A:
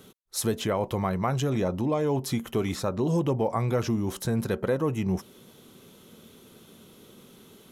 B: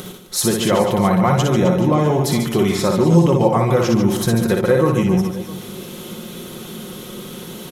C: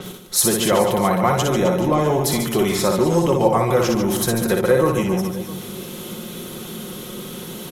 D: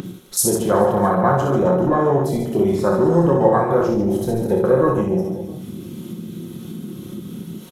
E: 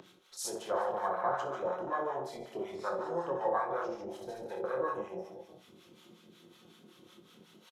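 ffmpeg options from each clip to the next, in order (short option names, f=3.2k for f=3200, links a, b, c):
-filter_complex "[0:a]asplit=2[a][b];[b]acompressor=mode=upward:threshold=-29dB:ratio=2.5,volume=2.5dB[c];[a][c]amix=inputs=2:normalize=0,aecho=1:1:5.6:0.49,aecho=1:1:60|144|261.6|426.2|656.7:0.631|0.398|0.251|0.158|0.1,volume=1dB"
-filter_complex "[0:a]acrossover=split=300[a][b];[a]asoftclip=type=tanh:threshold=-22.5dB[c];[c][b]amix=inputs=2:normalize=0,adynamicequalizer=threshold=0.00891:dfrequency=8000:dqfactor=0.7:tfrequency=8000:tqfactor=0.7:attack=5:release=100:ratio=0.375:range=3:mode=boostabove:tftype=highshelf"
-af "afwtdn=0.0794,aecho=1:1:29|71:0.531|0.335,acompressor=mode=upward:threshold=-25dB:ratio=2.5"
-filter_complex "[0:a]acrossover=split=510 6400:gain=0.0794 1 0.158[a][b][c];[a][b][c]amix=inputs=3:normalize=0,acrossover=split=820[d][e];[d]aeval=exprs='val(0)*(1-0.7/2+0.7/2*cos(2*PI*5.4*n/s))':c=same[f];[e]aeval=exprs='val(0)*(1-0.7/2-0.7/2*cos(2*PI*5.4*n/s))':c=same[g];[f][g]amix=inputs=2:normalize=0,asplit=2[h][i];[i]adelay=23,volume=-12dB[j];[h][j]amix=inputs=2:normalize=0,volume=-8.5dB"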